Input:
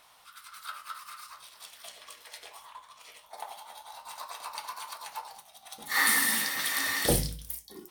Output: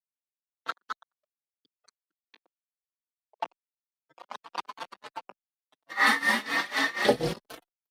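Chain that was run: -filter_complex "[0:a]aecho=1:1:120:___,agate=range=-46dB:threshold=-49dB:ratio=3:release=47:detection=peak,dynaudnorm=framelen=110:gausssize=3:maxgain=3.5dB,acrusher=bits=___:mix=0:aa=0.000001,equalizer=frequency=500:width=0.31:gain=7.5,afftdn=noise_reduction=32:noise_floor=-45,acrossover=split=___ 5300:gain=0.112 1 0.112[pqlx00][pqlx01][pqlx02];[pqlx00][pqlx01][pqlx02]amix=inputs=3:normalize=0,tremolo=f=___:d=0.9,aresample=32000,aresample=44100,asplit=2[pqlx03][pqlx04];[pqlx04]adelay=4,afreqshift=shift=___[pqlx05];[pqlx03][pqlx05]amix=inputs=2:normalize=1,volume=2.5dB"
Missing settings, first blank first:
0.398, 4, 150, 4.1, 2.9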